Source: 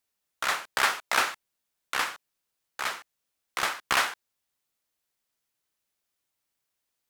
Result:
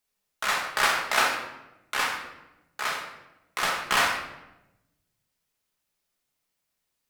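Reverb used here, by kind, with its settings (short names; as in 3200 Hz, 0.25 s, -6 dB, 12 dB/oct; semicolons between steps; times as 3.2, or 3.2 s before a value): shoebox room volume 370 m³, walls mixed, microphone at 1.4 m; gain -1 dB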